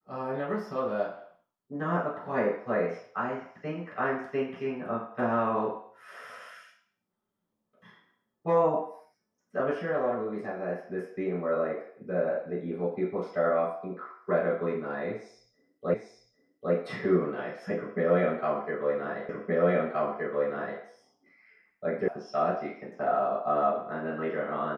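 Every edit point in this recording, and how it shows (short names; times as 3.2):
15.94 repeat of the last 0.8 s
19.29 repeat of the last 1.52 s
22.08 sound cut off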